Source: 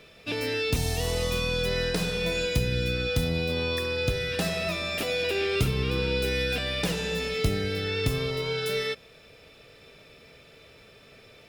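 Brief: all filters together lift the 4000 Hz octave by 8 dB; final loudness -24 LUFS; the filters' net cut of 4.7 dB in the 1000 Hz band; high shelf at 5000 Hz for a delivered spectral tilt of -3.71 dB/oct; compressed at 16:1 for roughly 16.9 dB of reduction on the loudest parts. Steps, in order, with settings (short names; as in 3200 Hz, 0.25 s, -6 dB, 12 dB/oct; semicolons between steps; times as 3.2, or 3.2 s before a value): bell 1000 Hz -7.5 dB; bell 4000 Hz +7 dB; high shelf 5000 Hz +7 dB; compressor 16:1, threshold -36 dBFS; gain +14.5 dB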